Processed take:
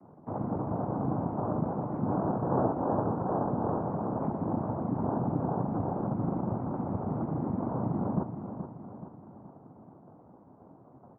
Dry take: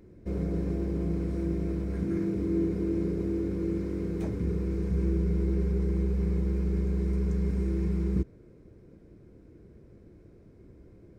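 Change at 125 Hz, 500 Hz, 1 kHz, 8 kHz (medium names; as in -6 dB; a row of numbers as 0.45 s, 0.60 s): -3.0 dB, +1.0 dB, +20.0 dB, no reading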